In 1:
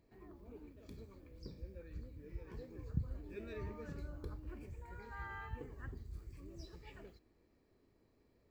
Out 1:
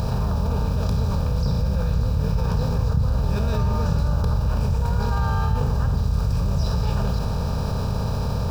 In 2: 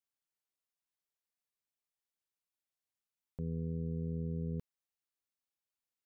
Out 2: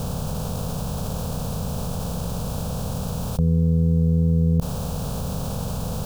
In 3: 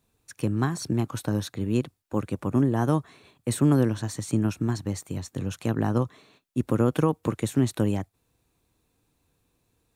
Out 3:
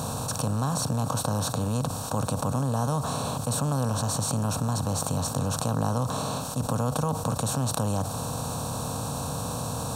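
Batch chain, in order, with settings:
per-bin compression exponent 0.4; fixed phaser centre 830 Hz, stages 4; fast leveller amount 70%; normalise peaks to -9 dBFS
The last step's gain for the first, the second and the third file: +14.0, +20.5, -4.5 dB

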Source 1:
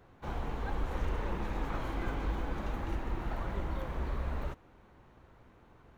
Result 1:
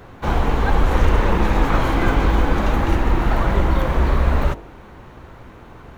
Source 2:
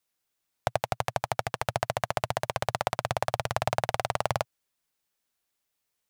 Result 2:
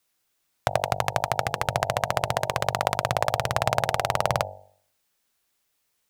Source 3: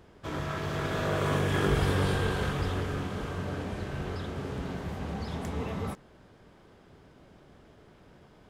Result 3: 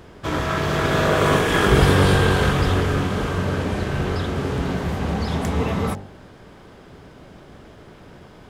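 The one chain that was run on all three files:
de-hum 48.7 Hz, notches 19; in parallel at -1 dB: limiter -15.5 dBFS; on the sum: normalise peaks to -3 dBFS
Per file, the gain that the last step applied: +13.0, +2.0, +6.5 dB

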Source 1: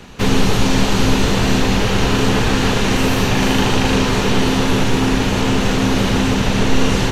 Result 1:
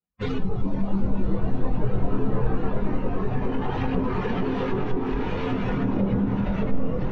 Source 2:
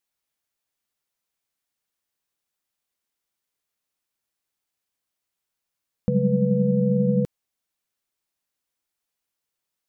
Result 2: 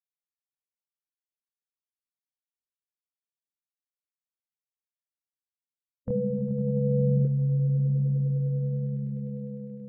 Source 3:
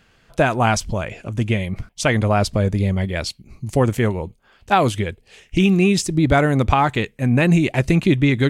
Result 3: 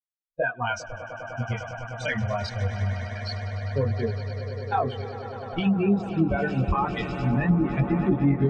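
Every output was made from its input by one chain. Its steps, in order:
per-bin expansion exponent 3; limiter -17.5 dBFS; on a send: swelling echo 0.101 s, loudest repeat 8, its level -15.5 dB; on the sum: low-pass opened by the level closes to 1600 Hz, open at -18.5 dBFS; chorus voices 2, 0.25 Hz, delay 23 ms, depth 1.8 ms; treble ducked by the level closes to 880 Hz, closed at -22 dBFS; match loudness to -27 LUFS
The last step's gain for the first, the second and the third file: +4.0, +0.5, +5.0 dB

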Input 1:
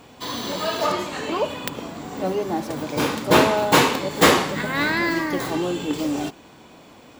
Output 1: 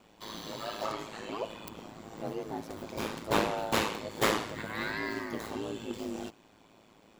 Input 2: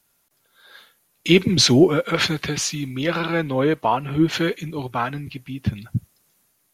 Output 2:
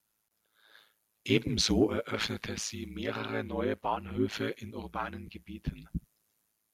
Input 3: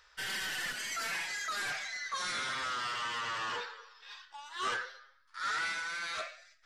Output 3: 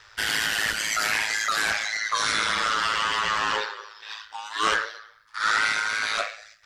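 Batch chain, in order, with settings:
added harmonics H 3 -29 dB, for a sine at -1 dBFS; ring modulator 54 Hz; normalise peaks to -12 dBFS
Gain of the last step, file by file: -9.0, -8.5, +15.5 dB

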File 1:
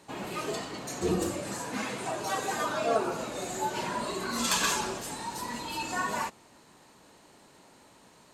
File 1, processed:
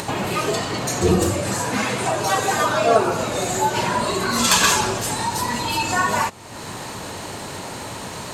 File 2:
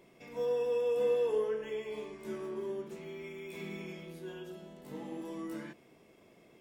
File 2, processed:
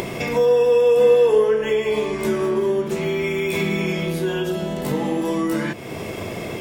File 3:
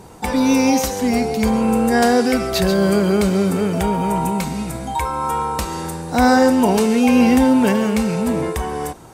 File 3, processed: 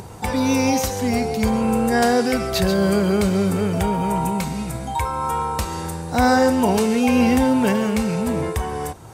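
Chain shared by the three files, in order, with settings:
bell 100 Hz +10 dB 0.57 oct; upward compressor, threshold -29 dBFS; bell 280 Hz -3 dB 0.74 oct; match loudness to -20 LUFS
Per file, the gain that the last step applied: +11.5, +16.0, -2.0 dB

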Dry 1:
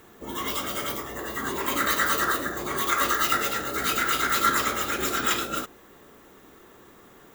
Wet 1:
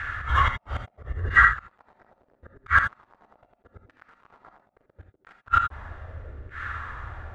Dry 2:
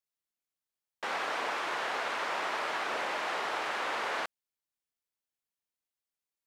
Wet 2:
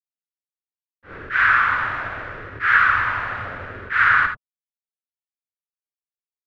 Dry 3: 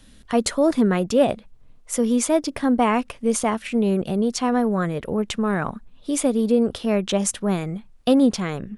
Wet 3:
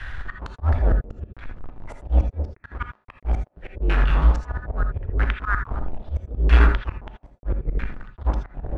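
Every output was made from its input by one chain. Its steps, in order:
octaver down 2 oct, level -5 dB; elliptic band-stop 100–1500 Hz, stop band 40 dB; in parallel at +0.5 dB: compressor 6:1, threshold -38 dBFS; on the sum: flipped gate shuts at -17 dBFS, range -40 dB; companded quantiser 4-bit; LFO low-pass saw down 0.77 Hz 400–1700 Hz; auto swell 0.125 s; non-linear reverb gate 0.1 s rising, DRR 6 dB; normalise peaks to -3 dBFS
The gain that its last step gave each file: +16.0, +15.0, +12.5 dB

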